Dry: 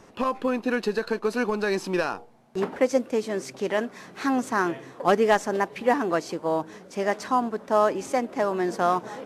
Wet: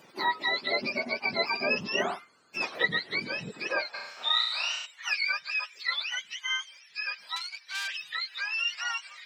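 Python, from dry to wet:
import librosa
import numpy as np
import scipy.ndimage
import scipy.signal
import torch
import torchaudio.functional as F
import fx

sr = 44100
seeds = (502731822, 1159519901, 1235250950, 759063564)

y = fx.octave_mirror(x, sr, pivot_hz=1000.0)
y = fx.room_flutter(y, sr, wall_m=5.9, rt60_s=0.85, at=(3.93, 4.85), fade=0.02)
y = fx.tube_stage(y, sr, drive_db=25.0, bias=0.65, at=(7.36, 7.88))
y = fx.filter_sweep_highpass(y, sr, from_hz=300.0, to_hz=2500.0, start_s=3.5, end_s=4.47, q=1.0)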